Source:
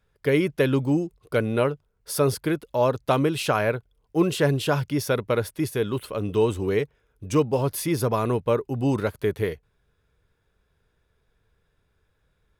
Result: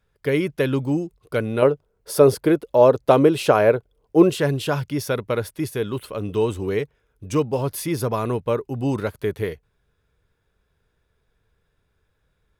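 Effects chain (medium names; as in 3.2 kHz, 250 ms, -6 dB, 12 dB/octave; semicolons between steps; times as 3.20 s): 1.62–4.30 s: peaking EQ 470 Hz +9.5 dB 1.9 oct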